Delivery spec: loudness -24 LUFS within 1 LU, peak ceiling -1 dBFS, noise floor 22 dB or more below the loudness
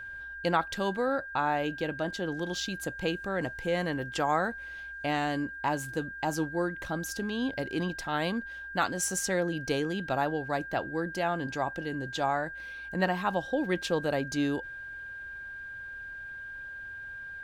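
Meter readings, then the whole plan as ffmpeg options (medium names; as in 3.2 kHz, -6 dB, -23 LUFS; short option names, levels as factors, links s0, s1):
steady tone 1.6 kHz; tone level -39 dBFS; loudness -32.0 LUFS; peak level -12.0 dBFS; loudness target -24.0 LUFS
-> -af "bandreject=f=1600:w=30"
-af "volume=2.51"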